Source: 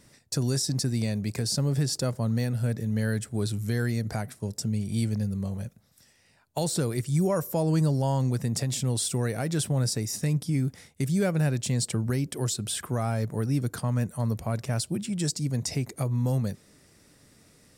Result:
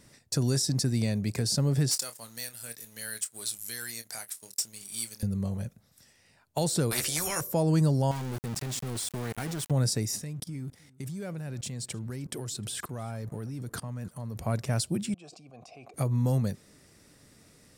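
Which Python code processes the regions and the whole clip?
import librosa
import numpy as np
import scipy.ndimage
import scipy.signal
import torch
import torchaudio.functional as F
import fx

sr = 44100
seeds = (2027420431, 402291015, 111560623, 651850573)

y = fx.chain(x, sr, fx.differentiator(),
    fx.leveller(passes=2),
    fx.doubler(ms=26.0, db=-11.0), at=(1.91, 5.23))
y = fx.chain(y, sr, fx.doubler(ms=13.0, db=-4.5),
    fx.spectral_comp(ratio=4.0), at=(6.91, 7.41))
y = fx.chain(y, sr, fx.peak_eq(hz=560.0, db=-10.0, octaves=0.36),
    fx.level_steps(step_db=11),
    fx.sample_gate(floor_db=-34.5), at=(8.11, 9.71))
y = fx.chain(y, sr, fx.level_steps(step_db=20),
    fx.leveller(passes=1),
    fx.echo_single(ms=309, db=-23.5), at=(10.22, 14.38))
y = fx.chain(y, sr, fx.vowel_filter(vowel='a'),
    fx.sustainer(db_per_s=31.0), at=(15.14, 15.94))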